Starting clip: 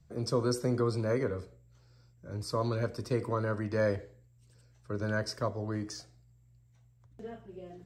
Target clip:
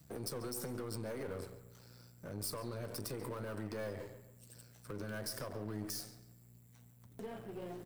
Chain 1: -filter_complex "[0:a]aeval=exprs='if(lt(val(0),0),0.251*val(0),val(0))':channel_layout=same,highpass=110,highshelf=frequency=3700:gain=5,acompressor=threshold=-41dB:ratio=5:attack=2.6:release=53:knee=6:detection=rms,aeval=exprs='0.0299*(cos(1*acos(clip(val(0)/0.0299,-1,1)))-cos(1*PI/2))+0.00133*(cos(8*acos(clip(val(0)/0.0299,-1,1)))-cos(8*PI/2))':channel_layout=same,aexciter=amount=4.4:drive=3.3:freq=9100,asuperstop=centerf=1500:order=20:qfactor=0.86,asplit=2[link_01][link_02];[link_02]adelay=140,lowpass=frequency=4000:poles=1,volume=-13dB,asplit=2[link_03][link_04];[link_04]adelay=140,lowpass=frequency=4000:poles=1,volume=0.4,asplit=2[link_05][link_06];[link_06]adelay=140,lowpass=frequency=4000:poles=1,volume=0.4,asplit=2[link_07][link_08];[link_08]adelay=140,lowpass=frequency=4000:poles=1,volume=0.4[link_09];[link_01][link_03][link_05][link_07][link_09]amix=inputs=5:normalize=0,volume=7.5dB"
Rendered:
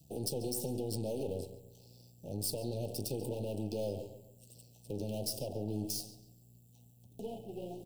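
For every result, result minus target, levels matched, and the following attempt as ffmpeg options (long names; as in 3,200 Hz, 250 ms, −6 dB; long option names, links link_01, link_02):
2,000 Hz band −18.5 dB; downward compressor: peak gain reduction −5 dB
-filter_complex "[0:a]aeval=exprs='if(lt(val(0),0),0.251*val(0),val(0))':channel_layout=same,highpass=110,highshelf=frequency=3700:gain=5,acompressor=threshold=-41dB:ratio=5:attack=2.6:release=53:knee=6:detection=rms,aeval=exprs='0.0299*(cos(1*acos(clip(val(0)/0.0299,-1,1)))-cos(1*PI/2))+0.00133*(cos(8*acos(clip(val(0)/0.0299,-1,1)))-cos(8*PI/2))':channel_layout=same,aexciter=amount=4.4:drive=3.3:freq=9100,asplit=2[link_01][link_02];[link_02]adelay=140,lowpass=frequency=4000:poles=1,volume=-13dB,asplit=2[link_03][link_04];[link_04]adelay=140,lowpass=frequency=4000:poles=1,volume=0.4,asplit=2[link_05][link_06];[link_06]adelay=140,lowpass=frequency=4000:poles=1,volume=0.4,asplit=2[link_07][link_08];[link_08]adelay=140,lowpass=frequency=4000:poles=1,volume=0.4[link_09];[link_01][link_03][link_05][link_07][link_09]amix=inputs=5:normalize=0,volume=7.5dB"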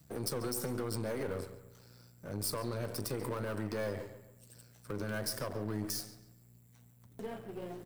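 downward compressor: peak gain reduction −5 dB
-filter_complex "[0:a]aeval=exprs='if(lt(val(0),0),0.251*val(0),val(0))':channel_layout=same,highpass=110,highshelf=frequency=3700:gain=5,acompressor=threshold=-47dB:ratio=5:attack=2.6:release=53:knee=6:detection=rms,aeval=exprs='0.0299*(cos(1*acos(clip(val(0)/0.0299,-1,1)))-cos(1*PI/2))+0.00133*(cos(8*acos(clip(val(0)/0.0299,-1,1)))-cos(8*PI/2))':channel_layout=same,aexciter=amount=4.4:drive=3.3:freq=9100,asplit=2[link_01][link_02];[link_02]adelay=140,lowpass=frequency=4000:poles=1,volume=-13dB,asplit=2[link_03][link_04];[link_04]adelay=140,lowpass=frequency=4000:poles=1,volume=0.4,asplit=2[link_05][link_06];[link_06]adelay=140,lowpass=frequency=4000:poles=1,volume=0.4,asplit=2[link_07][link_08];[link_08]adelay=140,lowpass=frequency=4000:poles=1,volume=0.4[link_09];[link_01][link_03][link_05][link_07][link_09]amix=inputs=5:normalize=0,volume=7.5dB"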